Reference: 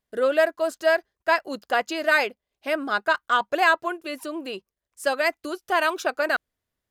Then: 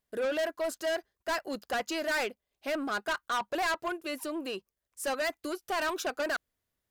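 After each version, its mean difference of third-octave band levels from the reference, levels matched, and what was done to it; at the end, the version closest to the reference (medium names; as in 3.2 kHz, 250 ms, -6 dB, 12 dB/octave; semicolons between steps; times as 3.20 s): 5.5 dB: treble shelf 9.3 kHz +5.5 dB; saturation -25 dBFS, distortion -6 dB; trim -2 dB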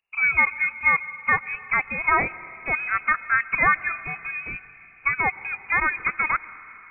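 14.5 dB: algorithmic reverb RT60 3.6 s, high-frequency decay 0.6×, pre-delay 80 ms, DRR 16.5 dB; frequency inversion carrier 2.8 kHz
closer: first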